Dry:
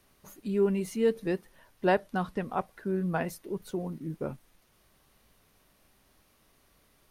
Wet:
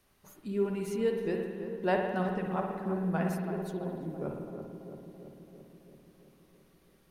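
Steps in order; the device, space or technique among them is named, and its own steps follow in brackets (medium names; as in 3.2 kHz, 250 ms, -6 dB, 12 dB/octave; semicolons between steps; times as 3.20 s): dub delay into a spring reverb (filtered feedback delay 334 ms, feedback 70%, low-pass 1.2 kHz, level -7.5 dB; spring tank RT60 1.4 s, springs 54 ms, chirp 20 ms, DRR 2.5 dB); trim -4.5 dB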